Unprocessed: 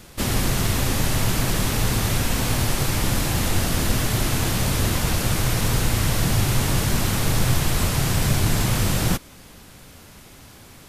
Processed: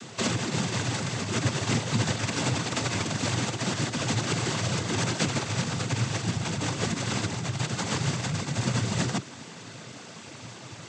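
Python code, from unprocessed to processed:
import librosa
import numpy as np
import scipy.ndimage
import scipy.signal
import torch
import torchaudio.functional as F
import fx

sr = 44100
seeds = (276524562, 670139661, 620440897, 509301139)

y = fx.over_compress(x, sr, threshold_db=-25.0, ratio=-1.0)
y = fx.noise_vocoder(y, sr, seeds[0], bands=16)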